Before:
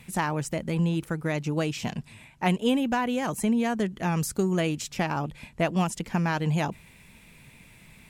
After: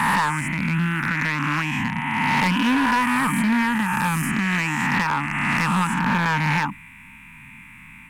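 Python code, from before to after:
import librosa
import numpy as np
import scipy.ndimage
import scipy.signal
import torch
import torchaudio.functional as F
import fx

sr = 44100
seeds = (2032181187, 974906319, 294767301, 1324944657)

y = fx.spec_swells(x, sr, rise_s=2.31)
y = fx.curve_eq(y, sr, hz=(140.0, 280.0, 430.0, 620.0, 900.0, 2500.0, 4400.0, 9000.0), db=(0, 5, -30, -26, 8, 9, -16, -3))
y = np.clip(y, -10.0 ** (-15.5 / 20.0), 10.0 ** (-15.5 / 20.0))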